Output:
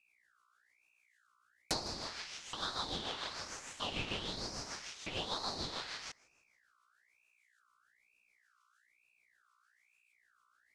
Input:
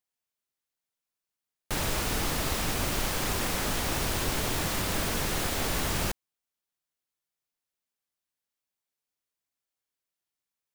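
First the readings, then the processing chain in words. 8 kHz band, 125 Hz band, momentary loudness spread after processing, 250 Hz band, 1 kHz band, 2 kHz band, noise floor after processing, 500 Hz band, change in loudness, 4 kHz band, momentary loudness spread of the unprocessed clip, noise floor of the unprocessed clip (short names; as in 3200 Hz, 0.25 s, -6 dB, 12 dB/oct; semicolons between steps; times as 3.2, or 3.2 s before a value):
-14.5 dB, -17.0 dB, 7 LU, -13.5 dB, -9.5 dB, -12.0 dB, -75 dBFS, -11.5 dB, -11.0 dB, -5.5 dB, 2 LU, under -85 dBFS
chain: LFO high-pass saw up 0.79 Hz 930–5400 Hz; weighting filter ITU-R 468; treble ducked by the level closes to 1400 Hz, closed at -21.5 dBFS; high shelf 12000 Hz -6 dB; thin delay 0.159 s, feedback 47%, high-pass 2400 Hz, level -24 dB; rotary speaker horn 6.7 Hz; buzz 60 Hz, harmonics 4, -71 dBFS -4 dB/oct; ring modulator with a swept carrier 1900 Hz, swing 35%, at 1.1 Hz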